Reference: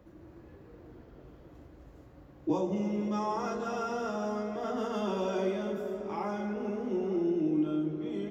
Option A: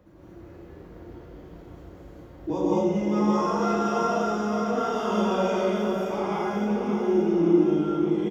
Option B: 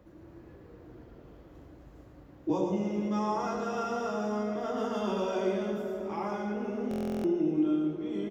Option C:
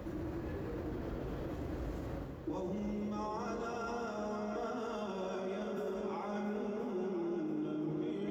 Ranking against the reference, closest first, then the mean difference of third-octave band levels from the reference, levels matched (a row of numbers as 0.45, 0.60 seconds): B, A, C; 1.5, 3.5, 7.0 decibels